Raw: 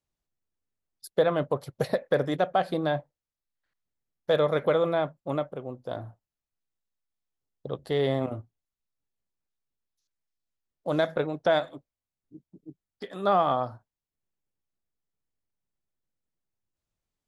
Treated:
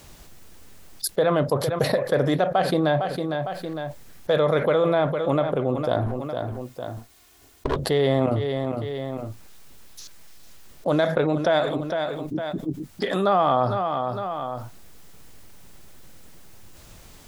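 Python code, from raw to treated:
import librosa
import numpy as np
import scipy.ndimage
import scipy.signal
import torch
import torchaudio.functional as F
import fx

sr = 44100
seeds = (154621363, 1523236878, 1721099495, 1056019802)

y = fx.lower_of_two(x, sr, delay_ms=2.8, at=(6.06, 7.76))
y = fx.echo_feedback(y, sr, ms=456, feedback_pct=21, wet_db=-19.5)
y = fx.env_flatten(y, sr, amount_pct=70)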